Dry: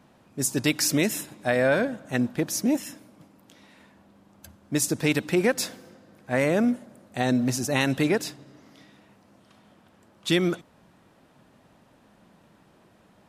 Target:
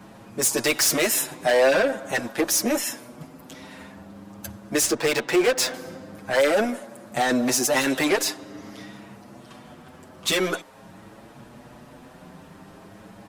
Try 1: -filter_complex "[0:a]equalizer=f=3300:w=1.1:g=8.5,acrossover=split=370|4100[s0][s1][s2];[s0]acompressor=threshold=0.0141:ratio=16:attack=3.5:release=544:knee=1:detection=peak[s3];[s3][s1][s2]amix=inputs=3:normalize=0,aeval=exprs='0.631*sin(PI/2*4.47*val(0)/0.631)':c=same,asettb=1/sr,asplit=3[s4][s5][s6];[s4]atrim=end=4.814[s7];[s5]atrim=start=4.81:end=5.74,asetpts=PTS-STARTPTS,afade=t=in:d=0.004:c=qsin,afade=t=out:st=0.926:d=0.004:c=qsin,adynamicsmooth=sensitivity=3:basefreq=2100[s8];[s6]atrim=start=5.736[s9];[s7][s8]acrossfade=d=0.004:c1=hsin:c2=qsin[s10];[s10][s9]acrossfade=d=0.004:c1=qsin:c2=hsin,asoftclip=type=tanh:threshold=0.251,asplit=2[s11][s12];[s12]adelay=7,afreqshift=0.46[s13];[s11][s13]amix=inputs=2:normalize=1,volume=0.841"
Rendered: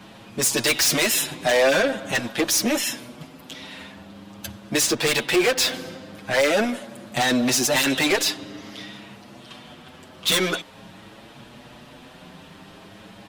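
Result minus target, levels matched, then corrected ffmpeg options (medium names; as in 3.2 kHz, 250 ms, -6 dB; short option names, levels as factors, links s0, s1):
compression: peak gain reduction -7 dB; 4 kHz band +3.5 dB
-filter_complex "[0:a]equalizer=f=3300:w=1.1:g=-2.5,acrossover=split=370|4100[s0][s1][s2];[s0]acompressor=threshold=0.00596:ratio=16:attack=3.5:release=544:knee=1:detection=peak[s3];[s3][s1][s2]amix=inputs=3:normalize=0,aeval=exprs='0.631*sin(PI/2*4.47*val(0)/0.631)':c=same,asettb=1/sr,asplit=3[s4][s5][s6];[s4]atrim=end=4.814[s7];[s5]atrim=start=4.81:end=5.74,asetpts=PTS-STARTPTS,afade=t=in:d=0.004:c=qsin,afade=t=out:st=0.926:d=0.004:c=qsin,adynamicsmooth=sensitivity=3:basefreq=2100[s8];[s6]atrim=start=5.736[s9];[s7][s8]acrossfade=d=0.004:c1=hsin:c2=qsin[s10];[s10][s9]acrossfade=d=0.004:c1=qsin:c2=hsin,asoftclip=type=tanh:threshold=0.251,asplit=2[s11][s12];[s12]adelay=7,afreqshift=0.46[s13];[s11][s13]amix=inputs=2:normalize=1,volume=0.841"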